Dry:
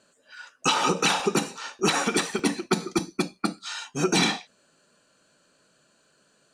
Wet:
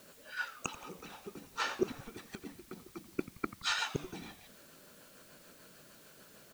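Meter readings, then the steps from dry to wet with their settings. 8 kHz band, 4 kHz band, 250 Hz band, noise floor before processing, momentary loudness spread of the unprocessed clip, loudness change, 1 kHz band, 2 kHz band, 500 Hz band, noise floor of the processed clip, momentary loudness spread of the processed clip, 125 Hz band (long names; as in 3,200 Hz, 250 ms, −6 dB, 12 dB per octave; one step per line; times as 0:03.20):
−17.0 dB, −14.0 dB, −16.0 dB, −65 dBFS, 12 LU, −14.5 dB, −15.0 dB, −11.0 dB, −14.0 dB, −59 dBFS, 21 LU, −15.5 dB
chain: high-shelf EQ 4,200 Hz −11 dB
rotating-speaker cabinet horn 6.7 Hz
gate with flip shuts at −26 dBFS, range −30 dB
echo with shifted repeats 86 ms, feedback 54%, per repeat −120 Hz, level −15 dB
background noise white −69 dBFS
level +8 dB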